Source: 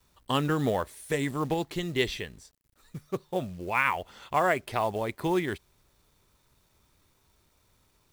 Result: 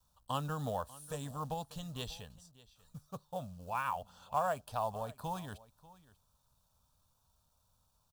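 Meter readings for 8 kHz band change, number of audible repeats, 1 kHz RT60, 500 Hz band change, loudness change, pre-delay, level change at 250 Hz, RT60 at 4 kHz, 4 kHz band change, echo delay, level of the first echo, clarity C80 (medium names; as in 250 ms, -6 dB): -6.5 dB, 1, no reverb, -11.5 dB, -10.0 dB, no reverb, -14.5 dB, no reverb, -11.5 dB, 591 ms, -20.0 dB, no reverb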